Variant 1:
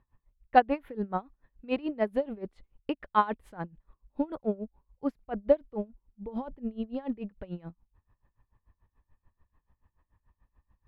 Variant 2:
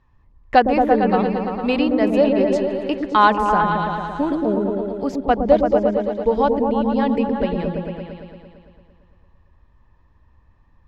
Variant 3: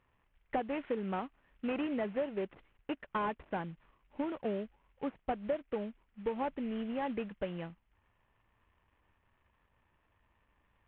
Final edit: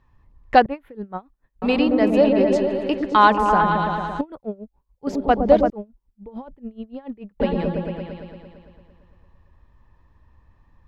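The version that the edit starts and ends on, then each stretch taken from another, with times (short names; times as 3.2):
2
0.66–1.62 from 1
4.21–5.07 from 1
5.7–7.4 from 1
not used: 3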